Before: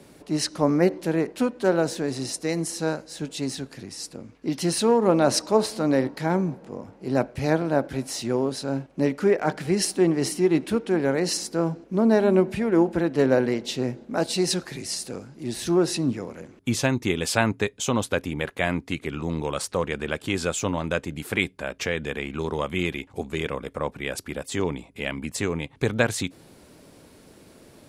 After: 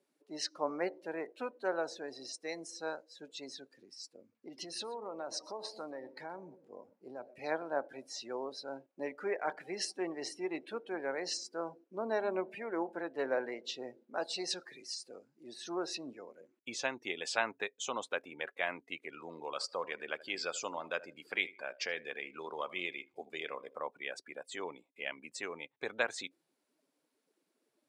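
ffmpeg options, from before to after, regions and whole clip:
-filter_complex "[0:a]asettb=1/sr,asplit=3[a][b][c];[a]atrim=end=4.204[d];[b]atrim=start=4.2:end=7.39,asetpts=PTS-STARTPTS,afade=t=in:d=0.004:c=qsin,afade=t=out:st=3.186:d=0.004:c=qsin,lowshelf=f=88:g=9.5,acompressor=threshold=-23dB:ratio=12:attack=3.2:release=140:knee=1:detection=peak,aecho=1:1:123:0.188,atrim=end_sample=140679[e];[c]atrim=start=7.386[f];[d][e]acrossfade=d=0.004:c1=hsin:c2=qsin[g];[g][f]acrossfade=d=0.004:c1=qsin:c2=hsin,asettb=1/sr,asplit=3[h][i][j];[h]atrim=end=19.114[k];[i]atrim=start=19.11:end=23.8,asetpts=PTS-STARTPTS,afade=t=in:d=0.004:c=qsin,afade=t=out:st=4.686:d=0.004:c=qsin,equalizer=f=4.8k:w=5.5:g=10,asplit=2[l][m];[m]adelay=78,lowpass=f=4.7k:p=1,volume=-16dB,asplit=2[n][o];[o]adelay=78,lowpass=f=4.7k:p=1,volume=0.4,asplit=2[p][q];[q]adelay=78,lowpass=f=4.7k:p=1,volume=0.4,asplit=2[r][s];[s]adelay=78,lowpass=f=4.7k:p=1,volume=0.4[t];[l][n][p][r][t]amix=inputs=5:normalize=0,atrim=end_sample=206829[u];[j]atrim=start=23.796[v];[k][u]acrossfade=d=0.004:c1=hsin:c2=qsin[w];[w][v]acrossfade=d=0.004:c1=qsin:c2=hsin,acrossover=split=7500[x][y];[y]acompressor=threshold=-45dB:ratio=4:attack=1:release=60[z];[x][z]amix=inputs=2:normalize=0,afftdn=nr=20:nf=-37,highpass=600,volume=-8dB"

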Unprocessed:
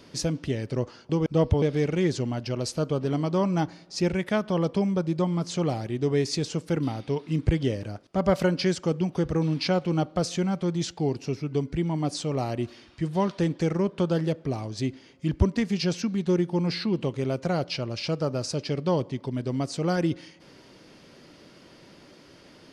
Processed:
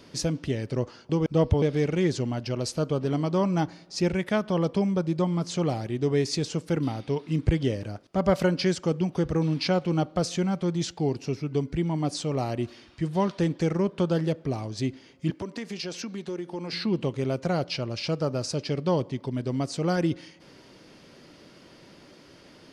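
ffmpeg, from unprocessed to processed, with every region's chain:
-filter_complex "[0:a]asettb=1/sr,asplit=3[a][b][c];[a]atrim=end=15.304[d];[b]atrim=start=15.3:end=16.73,asetpts=PTS-STARTPTS,afade=t=in:d=0.004:c=qsin,afade=t=out:st=1.426:d=0.004:c=qsin,highpass=290,acompressor=threshold=-30dB:ratio=4:attack=3.2:release=140:knee=1:detection=peak[e];[c]atrim=start=16.726[f];[d][e]acrossfade=d=0.004:c1=hsin:c2=qsin[g];[g][f]acrossfade=d=0.004:c1=qsin:c2=hsin"

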